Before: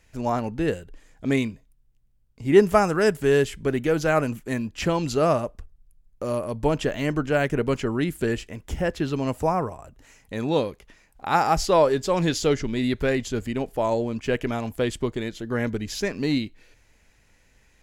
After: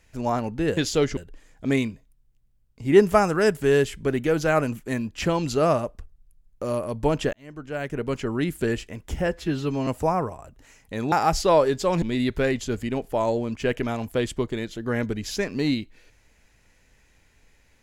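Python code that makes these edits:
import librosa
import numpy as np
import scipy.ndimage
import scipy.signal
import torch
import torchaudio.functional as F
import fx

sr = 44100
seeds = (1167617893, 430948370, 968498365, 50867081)

y = fx.edit(x, sr, fx.fade_in_span(start_s=6.93, length_s=1.16),
    fx.stretch_span(start_s=8.87, length_s=0.4, factor=1.5),
    fx.cut(start_s=10.52, length_s=0.84),
    fx.move(start_s=12.26, length_s=0.4, to_s=0.77), tone=tone)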